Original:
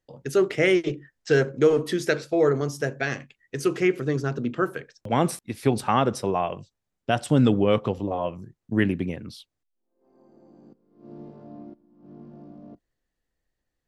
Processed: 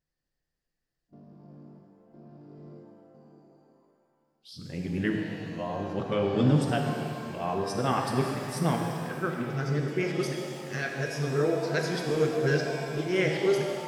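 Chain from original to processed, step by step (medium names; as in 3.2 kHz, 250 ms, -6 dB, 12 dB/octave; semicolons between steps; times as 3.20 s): reverse the whole clip; graphic EQ with 31 bands 160 Hz +9 dB, 1.6 kHz +3 dB, 5 kHz +9 dB; pitch-shifted reverb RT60 2.3 s, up +7 st, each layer -8 dB, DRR 1.5 dB; trim -8 dB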